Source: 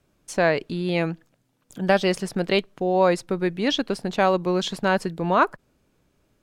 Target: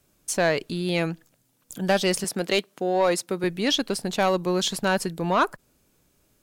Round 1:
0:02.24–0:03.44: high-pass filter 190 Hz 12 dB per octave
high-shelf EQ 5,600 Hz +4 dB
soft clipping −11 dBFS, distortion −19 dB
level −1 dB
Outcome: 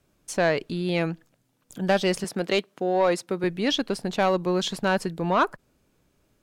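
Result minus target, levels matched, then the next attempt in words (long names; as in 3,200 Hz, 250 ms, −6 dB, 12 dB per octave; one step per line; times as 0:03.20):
8,000 Hz band −6.5 dB
0:02.24–0:03.44: high-pass filter 190 Hz 12 dB per octave
high-shelf EQ 5,600 Hz +15.5 dB
soft clipping −11 dBFS, distortion −18 dB
level −1 dB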